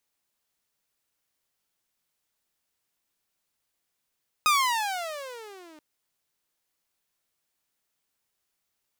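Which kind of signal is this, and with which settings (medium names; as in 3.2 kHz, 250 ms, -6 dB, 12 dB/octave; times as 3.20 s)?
gliding synth tone saw, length 1.33 s, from 1.26 kHz, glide -25 st, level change -31 dB, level -15 dB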